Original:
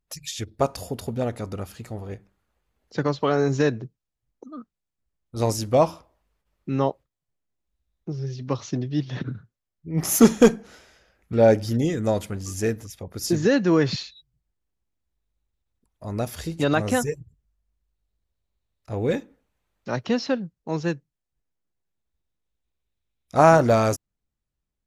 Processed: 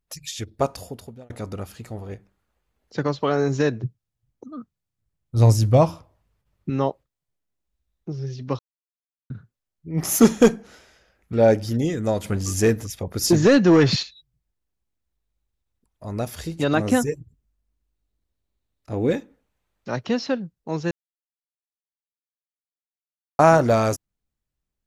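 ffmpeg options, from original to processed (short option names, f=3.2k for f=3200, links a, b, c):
-filter_complex "[0:a]asettb=1/sr,asplit=3[a][b][c];[a]atrim=end=3.834[d];[b]atrim=start=3.83:end=6.7,asetpts=PTS-STARTPTS,afade=t=in:d=0.004:c=qsin,afade=t=out:st=2.866:d=0.004:c=qsin,equalizer=f=110:t=o:w=1.2:g=13.5[e];[c]atrim=start=6.696[f];[d][e]acrossfade=d=0.004:c1=hsin:c2=qsin[g];[g][f]acrossfade=d=0.004:c1=qsin:c2=hsin,asplit=3[h][i][j];[h]afade=t=out:st=12.24:d=0.02[k];[i]aeval=exprs='0.355*sin(PI/2*1.41*val(0)/0.355)':c=same,afade=t=in:st=12.24:d=0.02,afade=t=out:st=14.02:d=0.02[l];[j]afade=t=in:st=14.02:d=0.02[m];[k][l][m]amix=inputs=3:normalize=0,asettb=1/sr,asplit=3[n][o][p];[n]atrim=end=16.744[q];[o]atrim=start=16.74:end=19.13,asetpts=PTS-STARTPTS,afade=t=in:d=0.004:c=qsin,afade=t=out:st=2.386:d=0.004:c=qsin,equalizer=f=280:t=o:w=0.77:g=7[r];[p]atrim=start=19.126[s];[q][r]acrossfade=d=0.004:c1=hsin:c2=qsin[t];[t][s]acrossfade=d=0.004:c1=qsin:c2=hsin,asplit=6[u][v][w][x][y][z];[u]atrim=end=1.3,asetpts=PTS-STARTPTS,afade=t=out:st=0.65:d=0.65[aa];[v]atrim=start=1.3:end=8.59,asetpts=PTS-STARTPTS,afade=t=in:d=0.004:c=hsin,afade=t=out:st=7.286:d=0.004:c=hsin[ab];[w]atrim=start=8.59:end=9.3,asetpts=PTS-STARTPTS,volume=0[ac];[x]atrim=start=9.3:end=20.91,asetpts=PTS-STARTPTS,afade=t=in:d=0.004:c=hsin,afade=t=out:st=11.606:d=0.004:c=hsin[ad];[y]atrim=start=20.91:end=23.39,asetpts=PTS-STARTPTS,volume=0[ae];[z]atrim=start=23.39,asetpts=PTS-STARTPTS,afade=t=in:d=0.004:c=hsin[af];[aa][ab][ac][ad][ae][af]concat=n=6:v=0:a=1"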